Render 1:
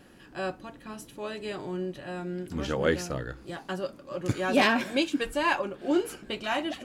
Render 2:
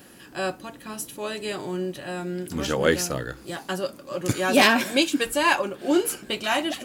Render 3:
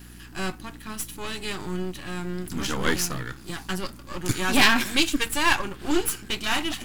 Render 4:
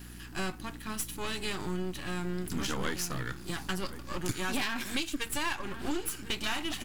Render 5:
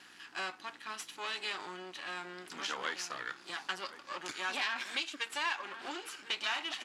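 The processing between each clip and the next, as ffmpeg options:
-af "highpass=f=97:p=1,aemphasis=mode=production:type=50kf,volume=1.68"
-af "aeval=exprs='if(lt(val(0),0),0.251*val(0),val(0))':c=same,equalizer=f=560:t=o:w=0.84:g=-13,aeval=exprs='val(0)+0.00316*(sin(2*PI*60*n/s)+sin(2*PI*2*60*n/s)/2+sin(2*PI*3*60*n/s)/3+sin(2*PI*4*60*n/s)/4+sin(2*PI*5*60*n/s)/5)':c=same,volume=1.68"
-filter_complex "[0:a]asplit=2[s0][s1];[s1]adelay=1050,volume=0.0891,highshelf=f=4000:g=-23.6[s2];[s0][s2]amix=inputs=2:normalize=0,acompressor=threshold=0.0501:ratio=10,volume=0.841"
-af "highpass=670,lowpass=5100"

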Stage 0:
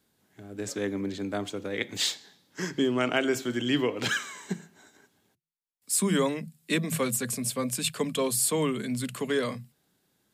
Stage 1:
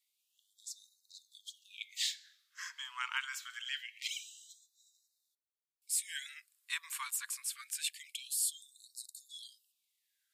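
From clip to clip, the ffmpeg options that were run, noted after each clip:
-filter_complex "[0:a]acrossover=split=170|510|4200[s0][s1][s2][s3];[s0]acompressor=threshold=0.00398:ratio=16[s4];[s4][s1][s2][s3]amix=inputs=4:normalize=0,afftfilt=real='re*gte(b*sr/1024,880*pow(3700/880,0.5+0.5*sin(2*PI*0.25*pts/sr)))':imag='im*gte(b*sr/1024,880*pow(3700/880,0.5+0.5*sin(2*PI*0.25*pts/sr)))':win_size=1024:overlap=0.75,volume=0.447"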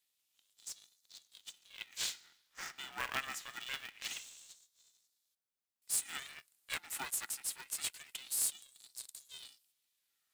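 -filter_complex "[0:a]acrossover=split=3000|4300[s0][s1][s2];[s1]acompressor=threshold=0.00112:ratio=6[s3];[s0][s3][s2]amix=inputs=3:normalize=0,aeval=exprs='val(0)*sgn(sin(2*PI*270*n/s))':c=same"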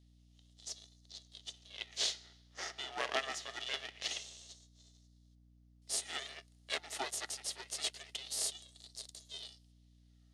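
-af "highpass=340,equalizer=f=410:t=q:w=4:g=8,equalizer=f=650:t=q:w=4:g=8,equalizer=f=1000:t=q:w=4:g=-7,equalizer=f=1500:t=q:w=4:g=-9,equalizer=f=2400:t=q:w=4:g=-8,equalizer=f=7700:t=q:w=4:g=-10,lowpass=f=8100:w=0.5412,lowpass=f=8100:w=1.3066,aeval=exprs='val(0)+0.000355*(sin(2*PI*60*n/s)+sin(2*PI*2*60*n/s)/2+sin(2*PI*3*60*n/s)/3+sin(2*PI*4*60*n/s)/4+sin(2*PI*5*60*n/s)/5)':c=same,volume=2"

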